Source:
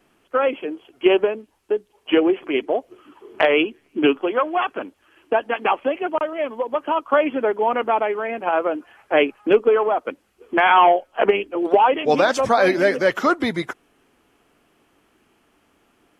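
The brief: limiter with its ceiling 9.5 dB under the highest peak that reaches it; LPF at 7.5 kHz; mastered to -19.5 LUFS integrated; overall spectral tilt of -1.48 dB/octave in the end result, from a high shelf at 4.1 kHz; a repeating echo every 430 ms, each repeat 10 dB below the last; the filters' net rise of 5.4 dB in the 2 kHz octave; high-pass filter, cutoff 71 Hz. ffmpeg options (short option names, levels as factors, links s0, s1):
-af "highpass=71,lowpass=7500,equalizer=f=2000:t=o:g=6,highshelf=f=4100:g=5,alimiter=limit=0.335:level=0:latency=1,aecho=1:1:430|860|1290|1720:0.316|0.101|0.0324|0.0104,volume=1.26"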